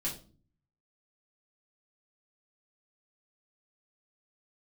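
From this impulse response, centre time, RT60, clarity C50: 22 ms, not exponential, 9.0 dB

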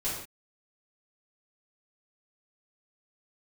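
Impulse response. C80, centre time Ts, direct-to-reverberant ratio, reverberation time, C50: 5.5 dB, 51 ms, -11.0 dB, not exponential, 1.5 dB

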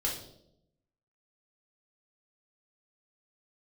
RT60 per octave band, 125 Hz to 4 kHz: 1.1, 1.0, 0.90, 0.60, 0.50, 0.60 s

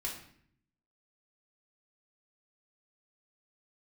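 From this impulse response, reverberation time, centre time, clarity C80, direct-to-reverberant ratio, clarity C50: 0.60 s, 30 ms, 9.5 dB, -4.0 dB, 6.0 dB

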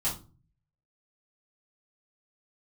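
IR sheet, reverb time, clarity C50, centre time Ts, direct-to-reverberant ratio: 0.35 s, 8.5 dB, 24 ms, -9.0 dB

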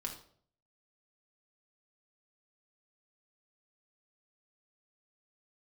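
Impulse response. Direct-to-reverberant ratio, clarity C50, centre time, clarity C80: 0.5 dB, 8.0 dB, 17 ms, 12.5 dB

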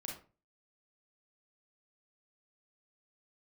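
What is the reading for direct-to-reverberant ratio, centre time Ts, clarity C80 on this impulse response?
-1.5 dB, 34 ms, 11.5 dB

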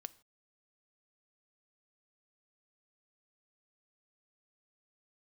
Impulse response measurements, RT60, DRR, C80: not exponential, 15.0 dB, 23.5 dB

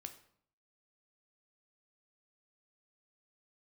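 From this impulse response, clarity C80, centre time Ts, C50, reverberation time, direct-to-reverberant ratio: 15.5 dB, 9 ms, 12.0 dB, 0.60 s, 7.0 dB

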